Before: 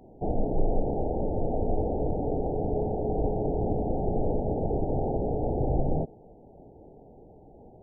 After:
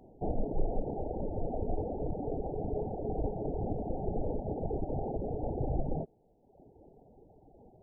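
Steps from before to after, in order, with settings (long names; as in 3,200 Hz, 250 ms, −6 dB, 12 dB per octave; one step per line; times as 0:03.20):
reverb reduction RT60 1.2 s
level −4 dB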